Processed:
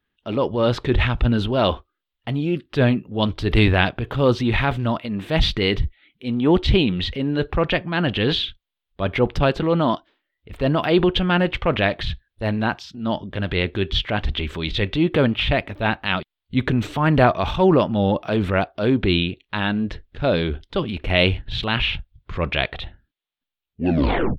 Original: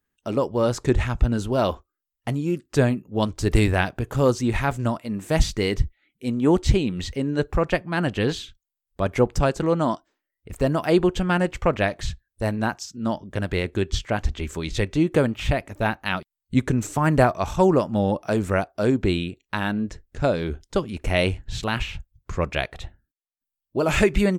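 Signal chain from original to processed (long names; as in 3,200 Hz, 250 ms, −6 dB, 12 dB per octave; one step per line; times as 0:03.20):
turntable brake at the end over 0.85 s
transient designer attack −5 dB, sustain +4 dB
high shelf with overshoot 5,000 Hz −13.5 dB, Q 3
level +3 dB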